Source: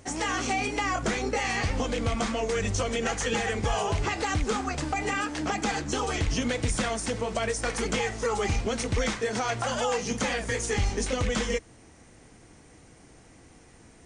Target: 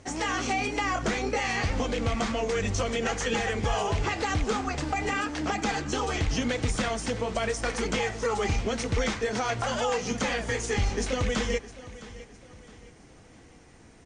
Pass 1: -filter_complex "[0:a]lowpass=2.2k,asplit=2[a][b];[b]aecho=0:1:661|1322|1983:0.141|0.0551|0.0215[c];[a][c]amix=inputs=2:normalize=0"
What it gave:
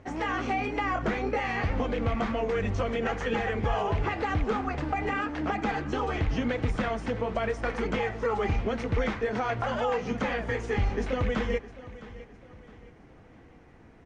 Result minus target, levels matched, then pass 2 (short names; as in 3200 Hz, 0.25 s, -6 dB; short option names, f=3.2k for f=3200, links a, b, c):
8000 Hz band -16.5 dB
-filter_complex "[0:a]lowpass=7.2k,asplit=2[a][b];[b]aecho=0:1:661|1322|1983:0.141|0.0551|0.0215[c];[a][c]amix=inputs=2:normalize=0"